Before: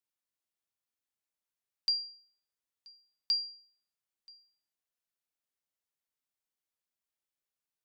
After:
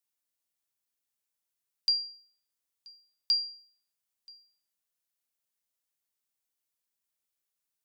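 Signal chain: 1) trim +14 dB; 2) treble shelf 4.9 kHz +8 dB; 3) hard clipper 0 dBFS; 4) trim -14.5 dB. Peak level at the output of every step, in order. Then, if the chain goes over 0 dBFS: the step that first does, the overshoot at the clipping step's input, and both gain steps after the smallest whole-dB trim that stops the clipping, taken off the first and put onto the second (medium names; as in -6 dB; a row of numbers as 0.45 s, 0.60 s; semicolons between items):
-7.5 dBFS, -3.5 dBFS, -3.5 dBFS, -18.0 dBFS; nothing clips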